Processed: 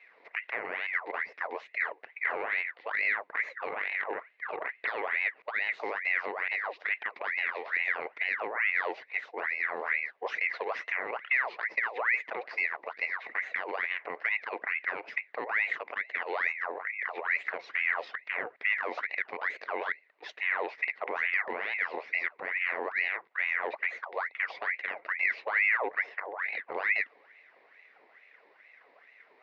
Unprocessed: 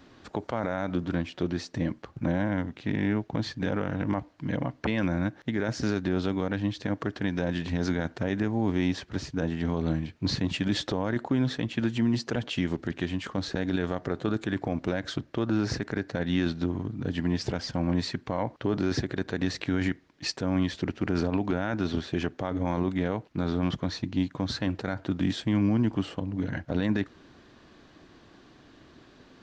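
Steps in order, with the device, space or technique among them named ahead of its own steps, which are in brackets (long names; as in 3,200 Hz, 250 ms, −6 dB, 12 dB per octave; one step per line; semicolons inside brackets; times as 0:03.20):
voice changer toy (ring modulator whose carrier an LFO sweeps 1,500 Hz, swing 60%, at 2.3 Hz; loudspeaker in its box 430–3,500 Hz, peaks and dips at 450 Hz +6 dB, 630 Hz +3 dB, 910 Hz −3 dB, 1,300 Hz −5 dB, 2,000 Hz +10 dB, 3,200 Hz −8 dB)
level −4 dB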